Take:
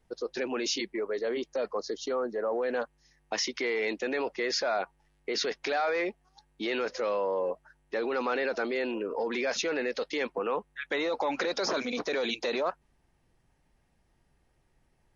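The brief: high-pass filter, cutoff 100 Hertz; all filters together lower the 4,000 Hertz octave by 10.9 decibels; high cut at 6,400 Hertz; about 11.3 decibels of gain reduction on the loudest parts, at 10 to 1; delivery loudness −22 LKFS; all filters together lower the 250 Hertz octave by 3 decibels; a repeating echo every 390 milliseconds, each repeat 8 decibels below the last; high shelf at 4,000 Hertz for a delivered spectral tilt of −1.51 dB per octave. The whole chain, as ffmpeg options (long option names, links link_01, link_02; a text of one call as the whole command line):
ffmpeg -i in.wav -af "highpass=100,lowpass=6400,equalizer=frequency=250:width_type=o:gain=-4,highshelf=frequency=4000:gain=-8.5,equalizer=frequency=4000:width_type=o:gain=-7.5,acompressor=threshold=-39dB:ratio=10,aecho=1:1:390|780|1170|1560|1950:0.398|0.159|0.0637|0.0255|0.0102,volume=21dB" out.wav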